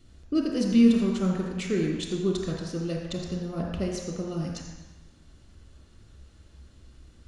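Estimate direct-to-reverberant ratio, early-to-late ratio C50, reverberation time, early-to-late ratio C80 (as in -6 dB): -0.5 dB, 1.0 dB, 1.1 s, 3.0 dB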